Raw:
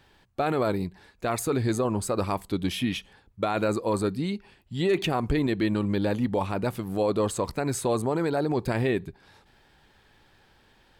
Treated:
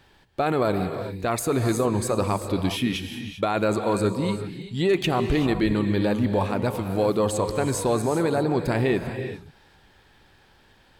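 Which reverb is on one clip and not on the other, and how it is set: gated-style reverb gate 420 ms rising, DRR 7.5 dB; trim +2.5 dB

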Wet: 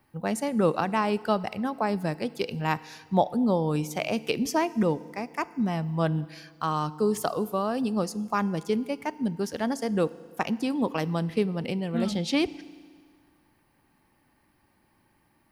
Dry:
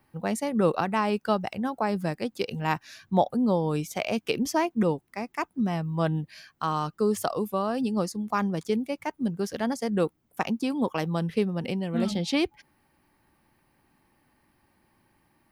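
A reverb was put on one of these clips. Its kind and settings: FDN reverb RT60 1.8 s, low-frequency decay 1×, high-frequency decay 0.95×, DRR 17 dB

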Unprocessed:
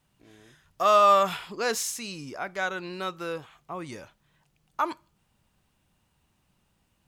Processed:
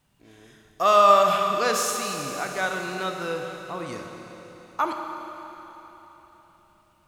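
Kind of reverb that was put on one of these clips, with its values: Schroeder reverb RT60 3.9 s, combs from 28 ms, DRR 3 dB; trim +2 dB

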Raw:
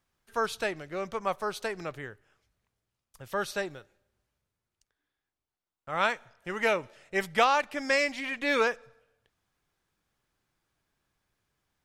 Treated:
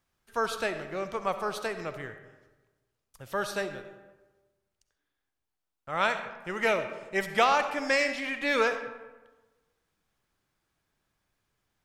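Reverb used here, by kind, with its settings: algorithmic reverb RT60 1.2 s, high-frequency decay 0.55×, pre-delay 25 ms, DRR 8.5 dB

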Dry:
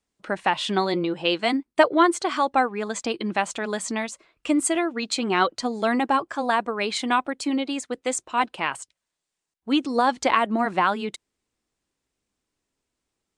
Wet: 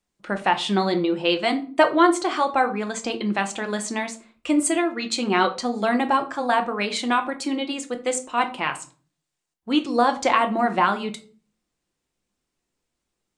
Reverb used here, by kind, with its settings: simulated room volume 300 m³, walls furnished, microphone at 0.87 m

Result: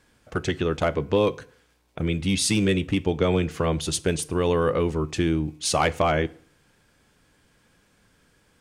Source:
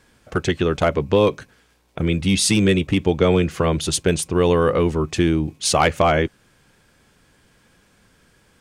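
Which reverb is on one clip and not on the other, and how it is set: FDN reverb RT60 0.53 s, low-frequency decay 1×, high-frequency decay 0.85×, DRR 16 dB; trim -5 dB

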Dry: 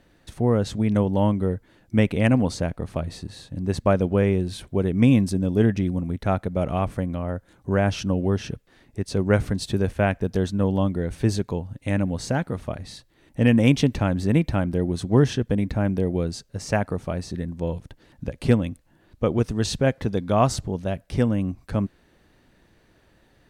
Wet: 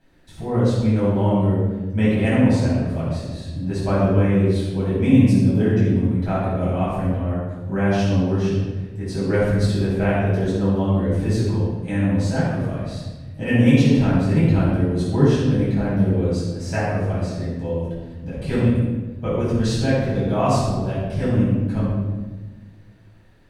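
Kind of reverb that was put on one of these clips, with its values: simulated room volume 860 m³, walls mixed, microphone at 8.2 m; trim -12.5 dB

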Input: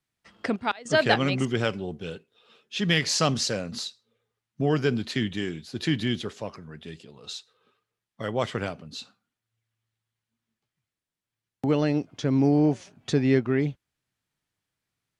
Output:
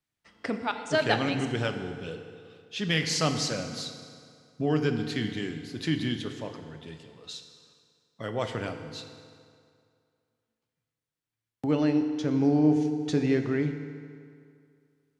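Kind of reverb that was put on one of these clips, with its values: FDN reverb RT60 2.3 s, low-frequency decay 0.9×, high-frequency decay 0.75×, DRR 6 dB; trim -4 dB

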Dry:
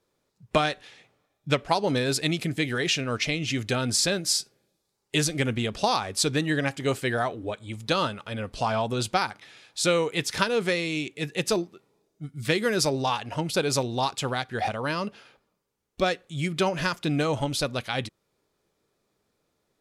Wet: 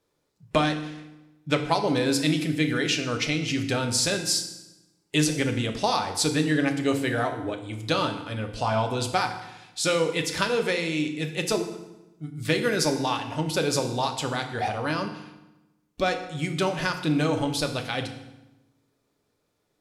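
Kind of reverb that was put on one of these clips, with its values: FDN reverb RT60 0.98 s, low-frequency decay 1.3×, high-frequency decay 0.85×, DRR 5 dB; trim -1 dB

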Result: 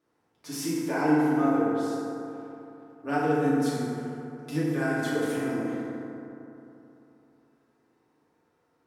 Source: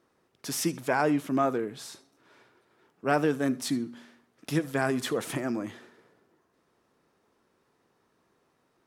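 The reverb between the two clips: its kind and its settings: FDN reverb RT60 3.1 s, high-frequency decay 0.35×, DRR -9.5 dB; trim -11 dB

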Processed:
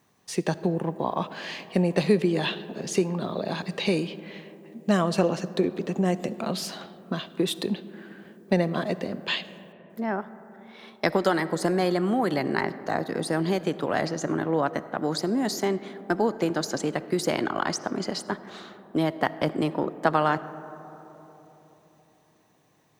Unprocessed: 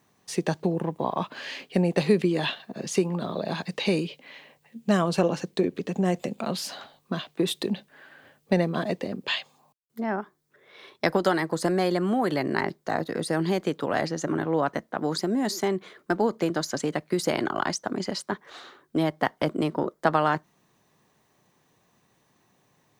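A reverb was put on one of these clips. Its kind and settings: algorithmic reverb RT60 3.9 s, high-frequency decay 0.25×, pre-delay 25 ms, DRR 15 dB

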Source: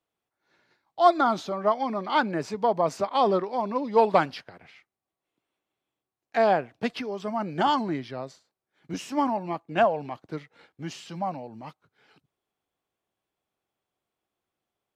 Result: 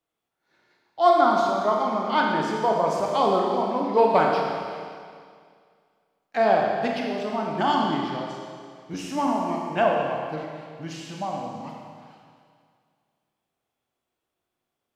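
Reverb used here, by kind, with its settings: Schroeder reverb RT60 2.1 s, combs from 25 ms, DRR -1 dB; trim -1 dB

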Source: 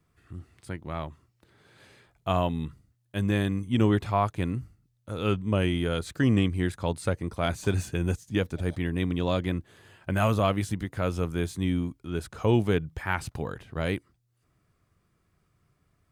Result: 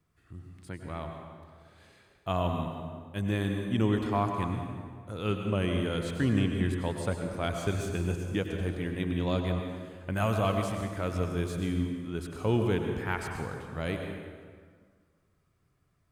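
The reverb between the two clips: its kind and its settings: plate-style reverb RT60 1.8 s, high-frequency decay 0.7×, pre-delay 85 ms, DRR 3.5 dB; trim -4.5 dB

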